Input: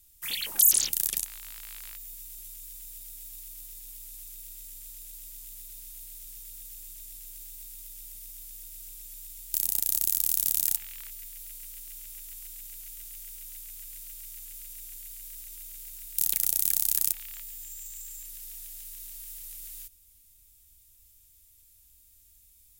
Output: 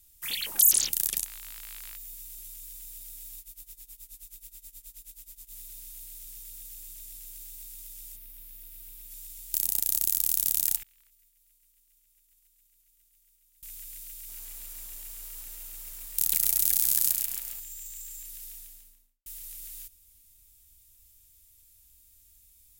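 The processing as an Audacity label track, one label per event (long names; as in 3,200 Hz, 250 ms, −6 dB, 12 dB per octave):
3.390000	5.520000	amplitude tremolo 9.4 Hz, depth 89%
8.150000	9.100000	parametric band 7,000 Hz −13.5 dB → −6 dB 1.4 octaves
10.830000	13.630000	downward expander −30 dBFS
14.150000	17.600000	feedback echo at a low word length 135 ms, feedback 55%, word length 8 bits, level −4 dB
18.430000	19.260000	fade out and dull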